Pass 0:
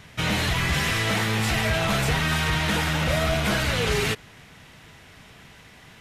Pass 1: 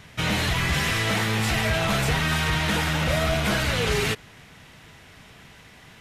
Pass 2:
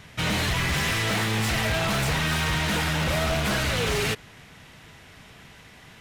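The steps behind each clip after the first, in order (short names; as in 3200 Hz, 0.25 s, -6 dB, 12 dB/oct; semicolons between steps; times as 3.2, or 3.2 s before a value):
nothing audible
wavefolder -19 dBFS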